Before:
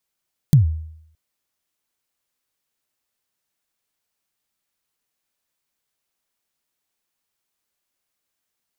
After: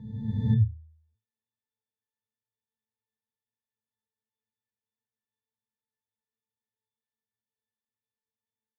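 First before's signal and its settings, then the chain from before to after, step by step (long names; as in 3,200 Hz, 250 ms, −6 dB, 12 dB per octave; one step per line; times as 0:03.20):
synth kick length 0.62 s, from 160 Hz, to 79 Hz, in 125 ms, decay 0.72 s, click on, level −5.5 dB
peak hold with a rise ahead of every peak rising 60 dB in 1.68 s
resonances in every octave A, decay 0.22 s
dynamic equaliser 1,500 Hz, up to +7 dB, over −55 dBFS, Q 0.98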